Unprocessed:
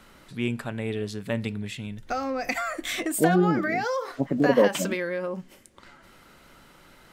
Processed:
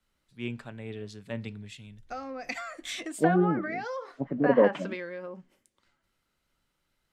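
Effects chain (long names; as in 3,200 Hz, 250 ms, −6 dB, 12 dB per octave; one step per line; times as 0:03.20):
treble cut that deepens with the level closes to 2,400 Hz, closed at −19 dBFS
multiband upward and downward expander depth 70%
level −7.5 dB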